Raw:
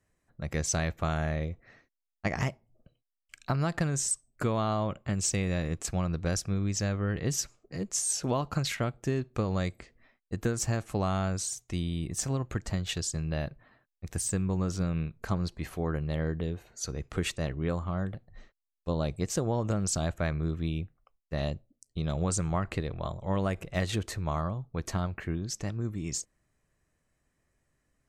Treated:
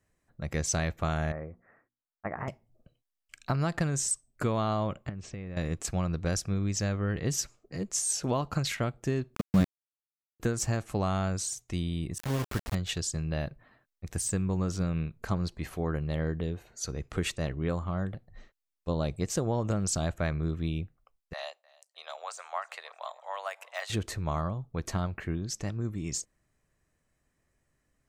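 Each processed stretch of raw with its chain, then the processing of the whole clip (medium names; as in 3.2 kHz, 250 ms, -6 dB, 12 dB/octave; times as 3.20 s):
1.32–2.48 s: inverse Chebyshev low-pass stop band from 3.8 kHz, stop band 50 dB + tilt EQ +3 dB/octave + hum notches 60/120/180/240/300/360 Hz
5.09–5.57 s: low-pass 2.2 kHz + compression, threshold -35 dBFS
9.35–10.40 s: peaking EQ 190 Hz +13 dB 0.88 oct + level held to a coarse grid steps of 20 dB + small samples zeroed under -31.5 dBFS
12.18–12.75 s: low-pass 2.7 kHz + band-stop 2 kHz, Q 19 + word length cut 6-bit, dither none
21.33–23.90 s: de-esser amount 95% + steep high-pass 660 Hz + feedback delay 307 ms, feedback 39%, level -23 dB
whole clip: none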